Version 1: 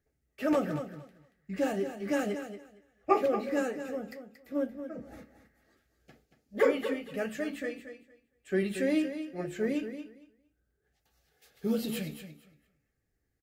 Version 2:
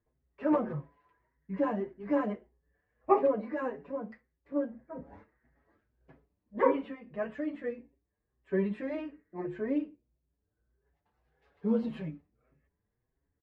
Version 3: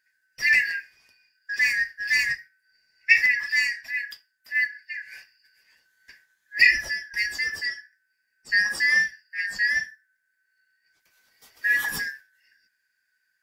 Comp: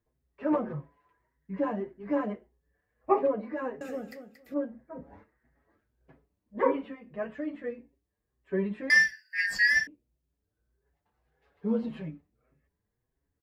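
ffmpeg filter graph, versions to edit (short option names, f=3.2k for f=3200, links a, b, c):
-filter_complex "[1:a]asplit=3[a][b][c];[a]atrim=end=3.812[d];[0:a]atrim=start=3.808:end=4.542[e];[b]atrim=start=4.538:end=8.902[f];[2:a]atrim=start=8.898:end=9.872[g];[c]atrim=start=9.868[h];[d][e]acrossfade=d=0.004:c1=hsin:c2=hsin[i];[i][f]acrossfade=d=0.004:c1=hsin:c2=hsin[j];[j][g]acrossfade=d=0.004:c1=hsin:c2=hsin[k];[k][h]acrossfade=d=0.004:c1=hsin:c2=hsin"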